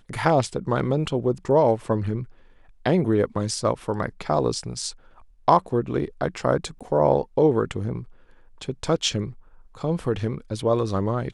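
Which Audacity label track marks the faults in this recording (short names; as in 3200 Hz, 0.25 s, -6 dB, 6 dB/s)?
6.790000	6.810000	gap 16 ms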